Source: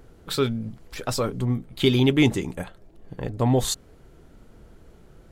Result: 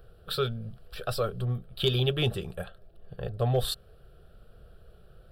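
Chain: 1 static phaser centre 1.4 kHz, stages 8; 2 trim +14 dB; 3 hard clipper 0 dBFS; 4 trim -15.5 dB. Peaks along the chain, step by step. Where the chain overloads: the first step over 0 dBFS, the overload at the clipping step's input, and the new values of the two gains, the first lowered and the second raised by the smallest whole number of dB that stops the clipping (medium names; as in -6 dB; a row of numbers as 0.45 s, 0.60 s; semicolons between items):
-10.0 dBFS, +4.0 dBFS, 0.0 dBFS, -15.5 dBFS; step 2, 4.0 dB; step 2 +10 dB, step 4 -11.5 dB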